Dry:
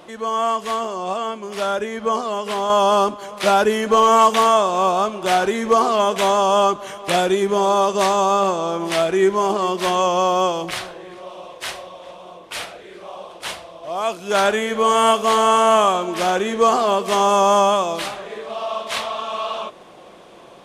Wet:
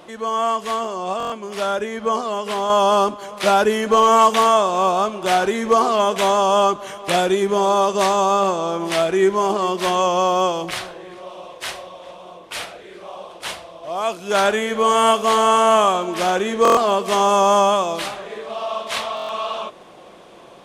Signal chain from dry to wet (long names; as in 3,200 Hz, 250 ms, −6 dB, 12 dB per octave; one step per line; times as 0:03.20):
buffer that repeats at 0:01.18/0:16.63/0:19.15, samples 1,024, times 5